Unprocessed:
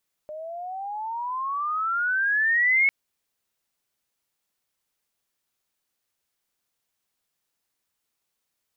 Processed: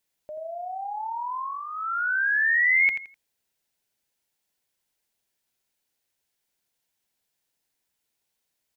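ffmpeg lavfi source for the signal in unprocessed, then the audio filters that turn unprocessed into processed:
-f lavfi -i "aevalsrc='pow(10,(-16+17.5*(t/2.6-1))/20)*sin(2*PI*603*2.6/(22.5*log(2)/12)*(exp(22.5*log(2)/12*t/2.6)-1))':d=2.6:s=44100"
-filter_complex "[0:a]equalizer=f=1200:t=o:w=0.23:g=-9.5,asplit=2[s0][s1];[s1]aecho=0:1:84|168|252:0.355|0.0852|0.0204[s2];[s0][s2]amix=inputs=2:normalize=0"

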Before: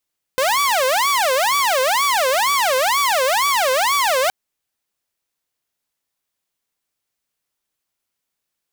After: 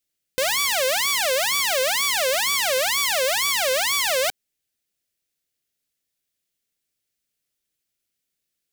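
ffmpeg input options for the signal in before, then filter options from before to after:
-f lavfi -i "aevalsrc='0.237*(2*mod((830.5*t-319.5/(2*PI*2.1)*sin(2*PI*2.1*t)),1)-1)':d=3.92:s=44100"
-af "equalizer=f=980:t=o:w=0.95:g=-14.5"

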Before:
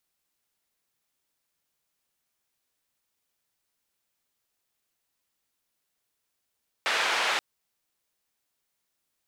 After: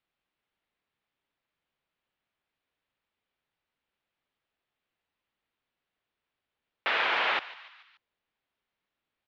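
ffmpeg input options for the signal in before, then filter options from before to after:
-f lavfi -i "anoisesrc=c=white:d=0.53:r=44100:seed=1,highpass=f=650,lowpass=f=2700,volume=-11.8dB"
-filter_complex "[0:a]lowpass=f=3400:w=0.5412,lowpass=f=3400:w=1.3066,asplit=5[s0][s1][s2][s3][s4];[s1]adelay=145,afreqshift=130,volume=0.133[s5];[s2]adelay=290,afreqshift=260,volume=0.0692[s6];[s3]adelay=435,afreqshift=390,volume=0.0359[s7];[s4]adelay=580,afreqshift=520,volume=0.0188[s8];[s0][s5][s6][s7][s8]amix=inputs=5:normalize=0"

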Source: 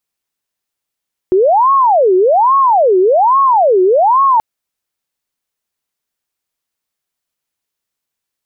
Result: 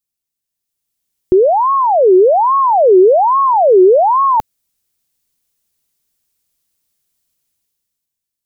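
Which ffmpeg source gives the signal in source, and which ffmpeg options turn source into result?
-f lavfi -i "aevalsrc='0.473*sin(2*PI*(732.5*t-367.5/(2*PI*1.2)*sin(2*PI*1.2*t)))':d=3.08:s=44100"
-af "equalizer=f=1100:w=0.32:g=-12.5,dynaudnorm=f=100:g=17:m=4.22"

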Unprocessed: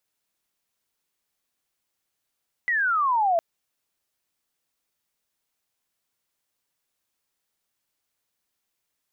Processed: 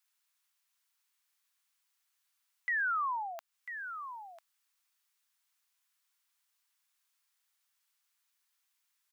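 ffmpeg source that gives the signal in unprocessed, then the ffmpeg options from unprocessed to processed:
-f lavfi -i "aevalsrc='pow(10,(-20.5+2.5*t/0.71)/20)*sin(2*PI*2000*0.71/log(650/2000)*(exp(log(650/2000)*t/0.71)-1))':d=0.71:s=44100"
-filter_complex "[0:a]alimiter=level_in=1.58:limit=0.0631:level=0:latency=1:release=261,volume=0.631,highpass=f=970:w=0.5412,highpass=f=970:w=1.3066,asplit=2[s0][s1];[s1]aecho=0:1:996:0.316[s2];[s0][s2]amix=inputs=2:normalize=0"

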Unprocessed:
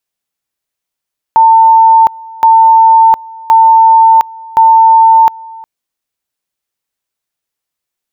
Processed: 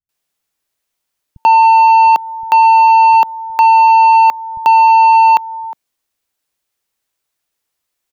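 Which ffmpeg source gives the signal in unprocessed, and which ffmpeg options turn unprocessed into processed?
-f lavfi -i "aevalsrc='pow(10,(-1.5-24*gte(mod(t,1.07),0.71))/20)*sin(2*PI*898*t)':d=4.28:s=44100"
-filter_complex "[0:a]asplit=2[s0][s1];[s1]acompressor=threshold=0.2:ratio=6,volume=0.708[s2];[s0][s2]amix=inputs=2:normalize=0,asoftclip=type=tanh:threshold=0.596,acrossover=split=160[s3][s4];[s4]adelay=90[s5];[s3][s5]amix=inputs=2:normalize=0"

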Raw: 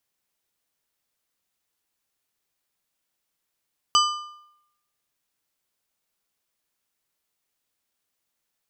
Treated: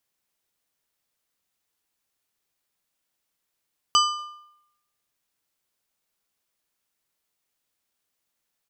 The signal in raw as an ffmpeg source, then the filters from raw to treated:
-f lavfi -i "aevalsrc='0.178*pow(10,-3*t/0.8)*sin(2*PI*1200*t)+0.126*pow(10,-3*t/0.608)*sin(2*PI*3000*t)+0.0891*pow(10,-3*t/0.528)*sin(2*PI*4800*t)+0.0631*pow(10,-3*t/0.494)*sin(2*PI*6000*t)+0.0447*pow(10,-3*t/0.456)*sin(2*PI*7800*t)':d=1.55:s=44100"
-filter_complex "[0:a]asplit=2[s0][s1];[s1]adelay=240,highpass=300,lowpass=3400,asoftclip=type=hard:threshold=0.15,volume=0.0316[s2];[s0][s2]amix=inputs=2:normalize=0"

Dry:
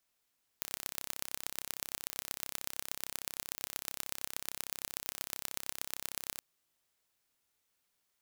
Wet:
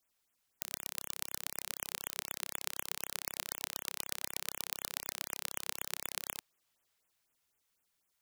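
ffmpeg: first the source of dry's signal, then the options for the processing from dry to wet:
-f lavfi -i "aevalsrc='0.422*eq(mod(n,1332),0)*(0.5+0.5*eq(mod(n,5328),0))':d=5.78:s=44100"
-filter_complex "[0:a]acrossover=split=360|5500[s0][s1][s2];[s1]dynaudnorm=f=360:g=9:m=1.58[s3];[s0][s3][s2]amix=inputs=3:normalize=0,afftfilt=real='re*(1-between(b*sr/1024,260*pow(5000/260,0.5+0.5*sin(2*PI*4*pts/sr))/1.41,260*pow(5000/260,0.5+0.5*sin(2*PI*4*pts/sr))*1.41))':imag='im*(1-between(b*sr/1024,260*pow(5000/260,0.5+0.5*sin(2*PI*4*pts/sr))/1.41,260*pow(5000/260,0.5+0.5*sin(2*PI*4*pts/sr))*1.41))':win_size=1024:overlap=0.75"

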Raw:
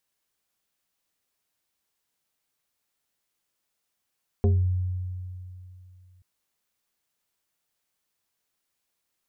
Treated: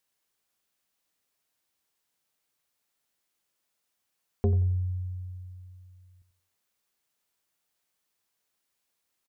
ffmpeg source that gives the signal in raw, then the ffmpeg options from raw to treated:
-f lavfi -i "aevalsrc='0.158*pow(10,-3*t/2.78)*sin(2*PI*91.3*t+1*pow(10,-3*t/0.35)*sin(2*PI*3.38*91.3*t))':d=1.78:s=44100"
-filter_complex "[0:a]lowshelf=f=140:g=-4,asplit=2[s0][s1];[s1]adelay=89,lowpass=f=930:p=1,volume=0.266,asplit=2[s2][s3];[s3]adelay=89,lowpass=f=930:p=1,volume=0.37,asplit=2[s4][s5];[s5]adelay=89,lowpass=f=930:p=1,volume=0.37,asplit=2[s6][s7];[s7]adelay=89,lowpass=f=930:p=1,volume=0.37[s8];[s2][s4][s6][s8]amix=inputs=4:normalize=0[s9];[s0][s9]amix=inputs=2:normalize=0"

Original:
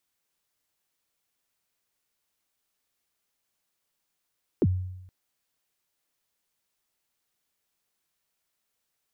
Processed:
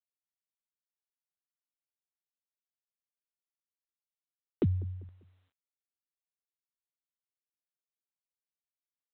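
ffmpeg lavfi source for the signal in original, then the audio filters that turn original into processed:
-f lavfi -i "aevalsrc='0.15*pow(10,-3*t/0.9)*sin(2*PI*(460*0.043/log(92/460)*(exp(log(92/460)*min(t,0.043)/0.043)-1)+92*max(t-0.043,0)))':d=0.47:s=44100"
-af "alimiter=limit=0.1:level=0:latency=1:release=398,aecho=1:1:197|394|591:0.0841|0.032|0.0121" -ar 8000 -c:a adpcm_g726 -b:a 32k

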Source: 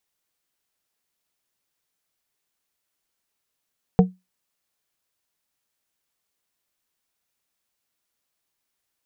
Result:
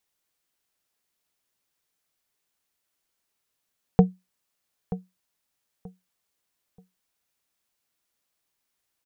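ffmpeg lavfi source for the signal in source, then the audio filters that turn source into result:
-f lavfi -i "aevalsrc='0.447*pow(10,-3*t/0.21)*sin(2*PI*184*t)+0.251*pow(10,-3*t/0.111)*sin(2*PI*460*t)+0.141*pow(10,-3*t/0.08)*sin(2*PI*736*t)':d=0.89:s=44100"
-filter_complex "[0:a]asplit=2[s0][s1];[s1]adelay=931,lowpass=f=1500:p=1,volume=0.188,asplit=2[s2][s3];[s3]adelay=931,lowpass=f=1500:p=1,volume=0.27,asplit=2[s4][s5];[s5]adelay=931,lowpass=f=1500:p=1,volume=0.27[s6];[s0][s2][s4][s6]amix=inputs=4:normalize=0"

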